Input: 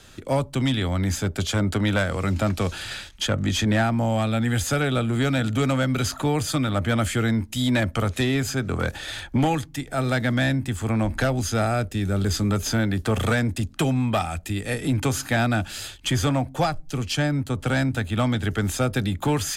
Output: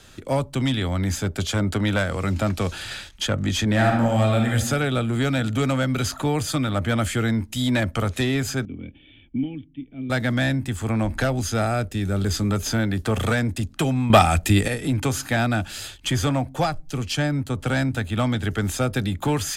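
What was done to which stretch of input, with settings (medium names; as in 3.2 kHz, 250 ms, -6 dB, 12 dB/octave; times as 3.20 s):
3.72–4.49 s: reverb throw, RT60 0.9 s, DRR 0.5 dB
8.65–10.10 s: cascade formant filter i
14.10–14.68 s: gain +10 dB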